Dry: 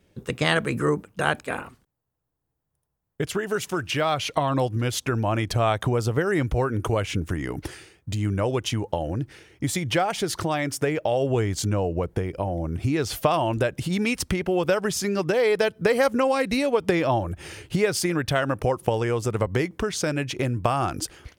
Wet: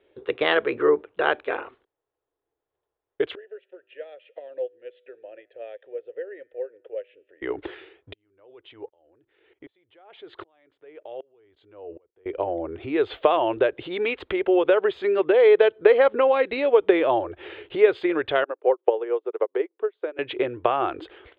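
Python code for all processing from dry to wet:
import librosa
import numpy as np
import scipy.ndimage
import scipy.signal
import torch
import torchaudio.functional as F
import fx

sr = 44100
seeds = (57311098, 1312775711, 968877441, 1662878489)

y = fx.chain(x, sr, fx.vowel_filter(vowel='e'),
    fx.comb_fb(f0_hz=55.0, decay_s=1.0, harmonics='odd', damping=0.0, mix_pct=40),
    fx.upward_expand(threshold_db=-48.0, expansion=1.5), at=(3.35, 7.42))
y = fx.chain(y, sr, fx.level_steps(step_db=18),
    fx.tremolo_decay(direction='swelling', hz=1.3, depth_db=32), at=(8.13, 12.26))
y = fx.chain(y, sr, fx.highpass(hz=360.0, slope=24),
    fx.tilt_eq(slope=-3.0),
    fx.upward_expand(threshold_db=-37.0, expansion=2.5), at=(18.44, 20.19))
y = scipy.signal.sosfilt(scipy.signal.ellip(4, 1.0, 40, 3600.0, 'lowpass', fs=sr, output='sos'), y)
y = fx.low_shelf_res(y, sr, hz=270.0, db=-13.0, q=3.0)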